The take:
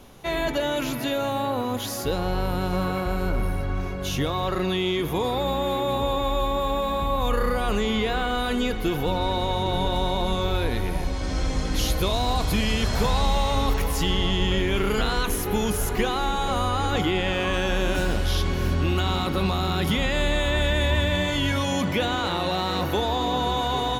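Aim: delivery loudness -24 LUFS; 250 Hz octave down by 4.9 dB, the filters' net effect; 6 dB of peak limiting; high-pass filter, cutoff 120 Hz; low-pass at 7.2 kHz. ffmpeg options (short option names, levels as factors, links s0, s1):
-af "highpass=120,lowpass=7200,equalizer=f=250:t=o:g=-6.5,volume=1.68,alimiter=limit=0.188:level=0:latency=1"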